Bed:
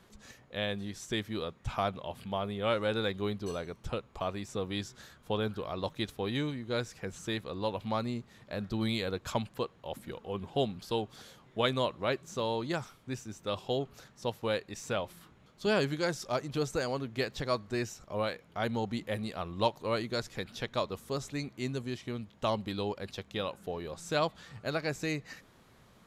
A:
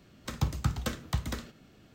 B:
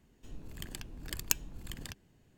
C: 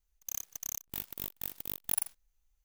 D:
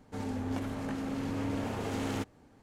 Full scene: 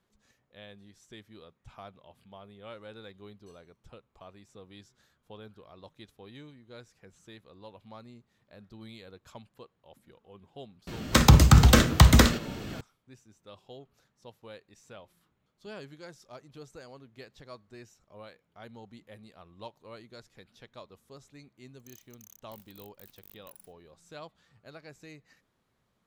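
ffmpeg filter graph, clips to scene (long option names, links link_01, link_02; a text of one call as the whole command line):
ffmpeg -i bed.wav -i cue0.wav -i cue1.wav -i cue2.wav -filter_complex "[0:a]volume=-15.5dB[link_01];[1:a]alimiter=level_in=22.5dB:limit=-1dB:release=50:level=0:latency=1[link_02];[3:a]acompressor=threshold=-49dB:ratio=6:attack=15:release=25:knee=1:detection=peak[link_03];[link_02]atrim=end=1.94,asetpts=PTS-STARTPTS,volume=-3.5dB,afade=type=in:duration=0.004:curve=hsin,afade=type=out:start_time=1.936:duration=0.004:curve=hsin,adelay=10870[link_04];[link_03]atrim=end=2.64,asetpts=PTS-STARTPTS,volume=-10dB,afade=type=in:duration=0.004:curve=hsin,afade=type=out:start_time=2.636:duration=0.004:curve=hsin,adelay=21580[link_05];[link_01][link_04][link_05]amix=inputs=3:normalize=0" out.wav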